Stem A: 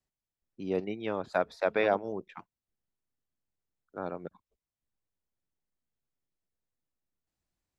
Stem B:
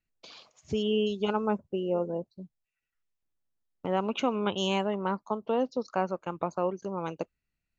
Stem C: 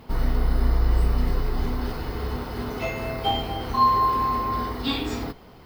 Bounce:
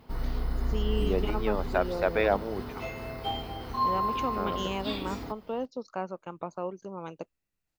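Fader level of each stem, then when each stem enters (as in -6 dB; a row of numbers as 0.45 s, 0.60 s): +1.5 dB, -5.5 dB, -8.5 dB; 0.40 s, 0.00 s, 0.00 s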